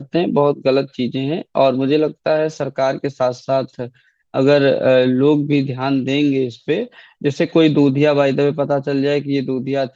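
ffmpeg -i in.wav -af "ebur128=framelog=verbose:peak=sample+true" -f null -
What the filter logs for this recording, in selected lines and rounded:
Integrated loudness:
  I:         -17.1 LUFS
  Threshold: -27.3 LUFS
Loudness range:
  LRA:         2.4 LU
  Threshold: -37.3 LUFS
  LRA low:   -19.0 LUFS
  LRA high:  -16.5 LUFS
Sample peak:
  Peak:       -1.1 dBFS
True peak:
  Peak:       -1.1 dBFS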